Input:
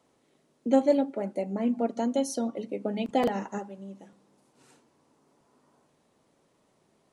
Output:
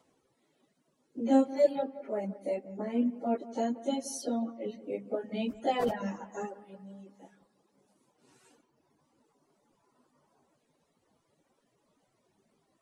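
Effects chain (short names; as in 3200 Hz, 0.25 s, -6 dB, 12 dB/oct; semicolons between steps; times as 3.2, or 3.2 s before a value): plain phase-vocoder stretch 1.8×; reverb removal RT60 0.97 s; dark delay 0.178 s, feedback 52%, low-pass 2100 Hz, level -17 dB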